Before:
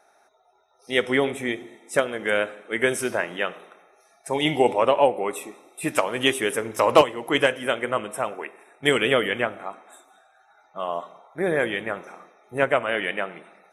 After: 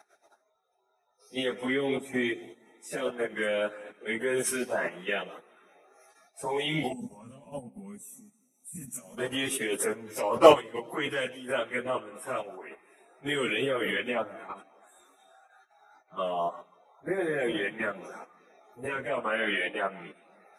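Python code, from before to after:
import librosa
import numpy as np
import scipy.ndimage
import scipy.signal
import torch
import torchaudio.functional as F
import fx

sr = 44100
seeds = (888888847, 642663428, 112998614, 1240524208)

y = scipy.signal.sosfilt(scipy.signal.butter(4, 130.0, 'highpass', fs=sr, output='sos'), x)
y = fx.level_steps(y, sr, step_db=15)
y = fx.filter_lfo_notch(y, sr, shape='saw_up', hz=2.7, low_hz=490.0, high_hz=5700.0, q=2.1)
y = fx.stretch_vocoder_free(y, sr, factor=1.5)
y = fx.spec_box(y, sr, start_s=6.92, length_s=2.26, low_hz=270.0, high_hz=5600.0, gain_db=-23)
y = y * 10.0 ** (4.5 / 20.0)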